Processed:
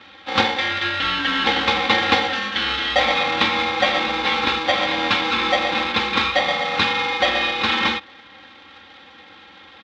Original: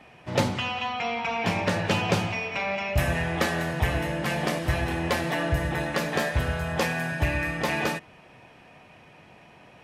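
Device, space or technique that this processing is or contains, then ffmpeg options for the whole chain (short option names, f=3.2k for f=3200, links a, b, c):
ring modulator pedal into a guitar cabinet: -af "aeval=exprs='val(0)*sgn(sin(2*PI*650*n/s))':c=same,highpass=57,highpass=91,equalizer=f=540:t=q:w=4:g=-4,equalizer=f=2.1k:t=q:w=4:g=5,equalizer=f=3.6k:t=q:w=4:g=10,lowpass=f=4.5k:w=0.5412,lowpass=f=4.5k:w=1.3066,aecho=1:1:3.7:0.75,volume=3.5dB"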